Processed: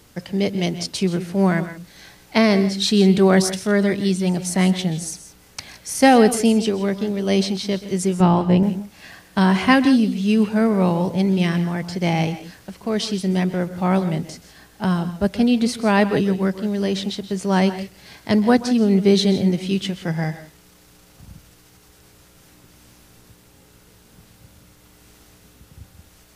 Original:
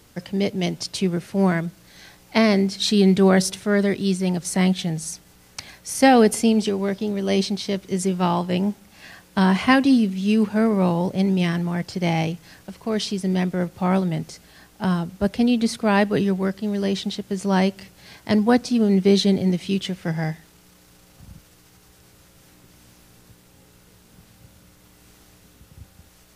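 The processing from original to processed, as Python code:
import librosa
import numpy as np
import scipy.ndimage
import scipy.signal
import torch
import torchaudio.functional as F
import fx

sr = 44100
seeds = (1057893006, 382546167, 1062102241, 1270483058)

y = fx.tilt_eq(x, sr, slope=-2.5, at=(8.2, 8.63))
y = fx.echo_multitap(y, sr, ms=(129, 153, 169), db=(-16.5, -18.5, -16.5))
y = y * librosa.db_to_amplitude(1.5)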